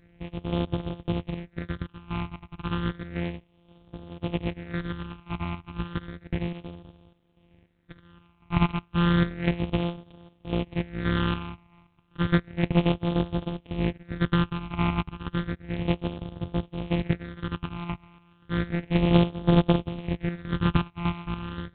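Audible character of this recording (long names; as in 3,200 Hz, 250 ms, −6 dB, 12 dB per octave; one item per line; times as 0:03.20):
a buzz of ramps at a fixed pitch in blocks of 256 samples
phaser sweep stages 8, 0.32 Hz, lowest notch 490–1,800 Hz
chopped level 1.9 Hz, depth 60%, duty 55%
G.726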